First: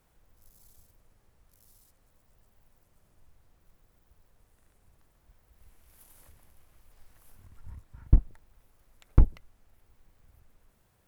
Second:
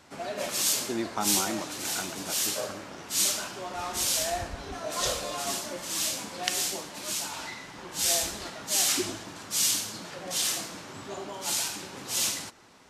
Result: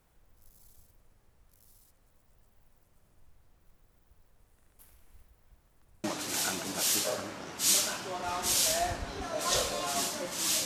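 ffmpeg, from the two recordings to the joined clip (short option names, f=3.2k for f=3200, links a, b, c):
-filter_complex "[0:a]apad=whole_dur=10.65,atrim=end=10.65,asplit=2[a][b];[a]atrim=end=4.792[c];[b]atrim=start=4.788:end=6.042,asetpts=PTS-STARTPTS,areverse[d];[1:a]atrim=start=1.548:end=6.16[e];[c][d]acrossfade=d=0.004:c1=hsin:c2=hsin[f];[f][e]acrossfade=d=0.004:c1=hsin:c2=hsin"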